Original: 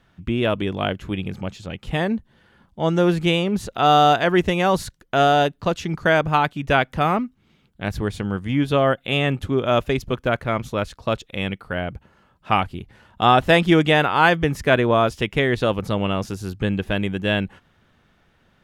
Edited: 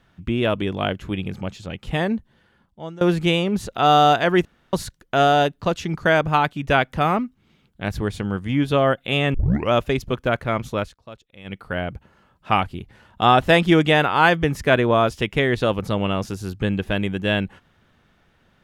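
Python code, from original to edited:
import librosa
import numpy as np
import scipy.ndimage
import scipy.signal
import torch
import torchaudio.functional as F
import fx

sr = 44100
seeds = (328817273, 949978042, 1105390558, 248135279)

y = fx.edit(x, sr, fx.fade_out_to(start_s=2.12, length_s=0.89, floor_db=-22.0),
    fx.room_tone_fill(start_s=4.45, length_s=0.28),
    fx.tape_start(start_s=9.34, length_s=0.38),
    fx.fade_down_up(start_s=10.74, length_s=0.91, db=-17.5, fade_s=0.21, curve='qsin'), tone=tone)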